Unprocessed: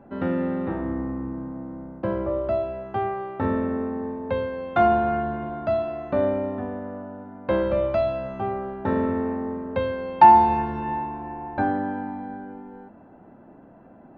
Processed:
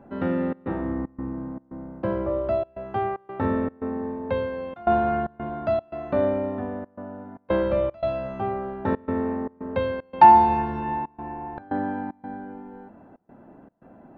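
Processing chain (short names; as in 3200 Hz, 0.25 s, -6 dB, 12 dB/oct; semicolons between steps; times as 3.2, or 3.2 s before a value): step gate "xxxx.xxx.xxx.xxx" 114 bpm -24 dB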